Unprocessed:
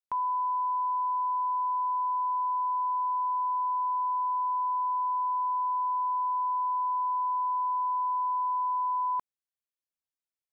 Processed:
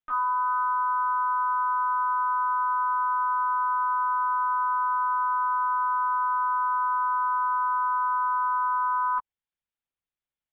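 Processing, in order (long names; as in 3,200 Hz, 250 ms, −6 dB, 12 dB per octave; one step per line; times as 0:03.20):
pitch-shifted copies added +4 semitones −3 dB, +7 semitones −14 dB
linear-prediction vocoder at 8 kHz pitch kept
level +1.5 dB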